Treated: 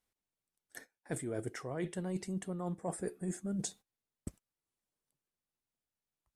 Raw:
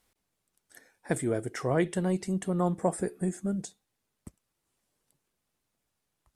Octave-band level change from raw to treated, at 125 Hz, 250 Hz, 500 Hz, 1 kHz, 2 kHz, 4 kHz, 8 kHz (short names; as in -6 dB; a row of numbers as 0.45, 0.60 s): -8.5, -8.5, -10.0, -11.5, -9.0, -4.5, -3.0 dB